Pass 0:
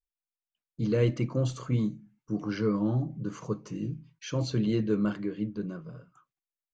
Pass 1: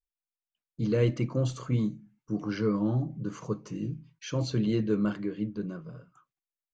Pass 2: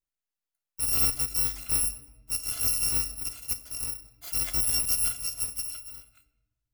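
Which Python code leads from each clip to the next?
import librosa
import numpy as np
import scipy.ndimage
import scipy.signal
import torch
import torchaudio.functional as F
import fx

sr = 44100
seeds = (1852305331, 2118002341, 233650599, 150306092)

y1 = x
y2 = fx.bit_reversed(y1, sr, seeds[0], block=256)
y2 = fx.room_shoebox(y2, sr, seeds[1], volume_m3=600.0, walls='mixed', distance_m=0.33)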